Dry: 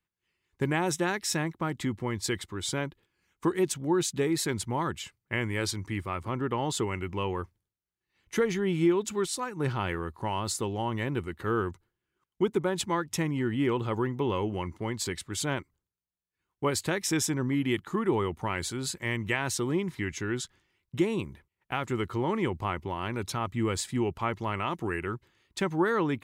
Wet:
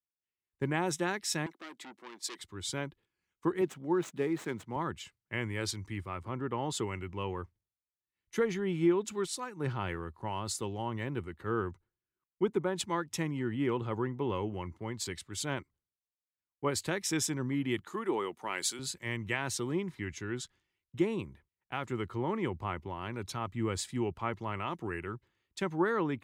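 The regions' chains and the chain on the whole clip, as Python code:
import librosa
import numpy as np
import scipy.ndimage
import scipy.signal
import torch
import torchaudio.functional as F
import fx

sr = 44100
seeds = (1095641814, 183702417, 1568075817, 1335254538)

y = fx.chain(x, sr, fx.highpass(hz=270.0, slope=24),
    fx.transformer_sat(knee_hz=2900.0), at=(1.46, 2.39))
y = fx.chain(y, sr, fx.median_filter(points=9),
    fx.highpass(hz=140.0, slope=12), at=(3.61, 4.76))
y = fx.chain(y, sr, fx.highpass(hz=280.0, slope=12),
    fx.high_shelf(hz=3200.0, db=8.0), at=(17.87, 18.79))
y = fx.high_shelf(y, sr, hz=10000.0, db=-5.5)
y = fx.band_widen(y, sr, depth_pct=40)
y = y * librosa.db_to_amplitude(-4.5)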